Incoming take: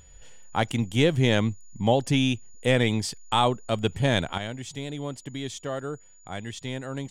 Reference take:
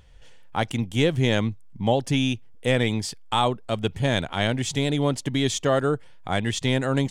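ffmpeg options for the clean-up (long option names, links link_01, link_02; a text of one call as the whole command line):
ffmpeg -i in.wav -af "bandreject=frequency=6900:width=30,asetnsamples=nb_out_samples=441:pad=0,asendcmd='4.38 volume volume 10.5dB',volume=0dB" out.wav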